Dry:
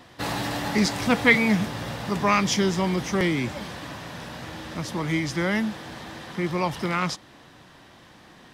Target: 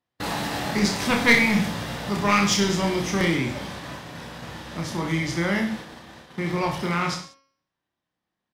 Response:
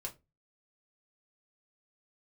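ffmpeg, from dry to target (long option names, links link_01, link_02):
-filter_complex "[0:a]agate=range=-35dB:threshold=-37dB:ratio=16:detection=peak,bandreject=frequency=272.9:width_type=h:width=4,bandreject=frequency=545.8:width_type=h:width=4,bandreject=frequency=818.7:width_type=h:width=4,bandreject=frequency=1091.6:width_type=h:width=4,bandreject=frequency=1364.5:width_type=h:width=4,bandreject=frequency=1637.4:width_type=h:width=4,bandreject=frequency=1910.3:width_type=h:width=4,bandreject=frequency=2183.2:width_type=h:width=4,bandreject=frequency=2456.1:width_type=h:width=4,bandreject=frequency=2729:width_type=h:width=4,bandreject=frequency=3001.9:width_type=h:width=4,bandreject=frequency=3274.8:width_type=h:width=4,bandreject=frequency=3547.7:width_type=h:width=4,bandreject=frequency=3820.6:width_type=h:width=4,bandreject=frequency=4093.5:width_type=h:width=4,bandreject=frequency=4366.4:width_type=h:width=4,bandreject=frequency=4639.3:width_type=h:width=4,bandreject=frequency=4912.2:width_type=h:width=4,bandreject=frequency=5185.1:width_type=h:width=4,bandreject=frequency=5458:width_type=h:width=4,bandreject=frequency=5730.9:width_type=h:width=4,bandreject=frequency=6003.8:width_type=h:width=4,bandreject=frequency=6276.7:width_type=h:width=4,aeval=exprs='clip(val(0),-1,0.133)':channel_layout=same,aecho=1:1:30|63|99.3|139.2|183.2:0.631|0.398|0.251|0.158|0.1,asplit=3[link_01][link_02][link_03];[link_01]afade=type=out:start_time=0.99:duration=0.02[link_04];[link_02]adynamicequalizer=threshold=0.0282:dfrequency=2000:dqfactor=0.7:tfrequency=2000:tqfactor=0.7:attack=5:release=100:ratio=0.375:range=1.5:mode=boostabove:tftype=highshelf,afade=type=in:start_time=0.99:duration=0.02,afade=type=out:start_time=3.36:duration=0.02[link_05];[link_03]afade=type=in:start_time=3.36:duration=0.02[link_06];[link_04][link_05][link_06]amix=inputs=3:normalize=0,volume=-1dB"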